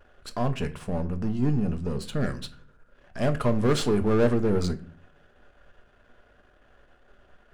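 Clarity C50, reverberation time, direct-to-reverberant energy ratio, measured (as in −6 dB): 16.0 dB, 0.45 s, 8.0 dB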